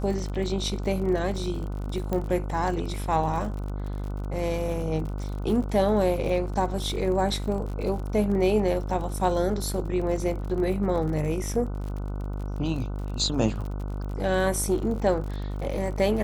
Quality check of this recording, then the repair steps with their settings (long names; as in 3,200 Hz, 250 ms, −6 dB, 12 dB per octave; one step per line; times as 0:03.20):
mains buzz 50 Hz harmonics 30 −31 dBFS
surface crackle 47 per second −34 dBFS
0:02.13: click −16 dBFS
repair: click removal
hum removal 50 Hz, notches 30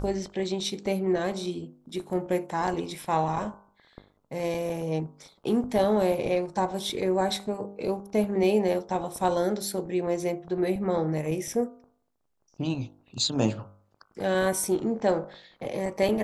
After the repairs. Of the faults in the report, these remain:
0:02.13: click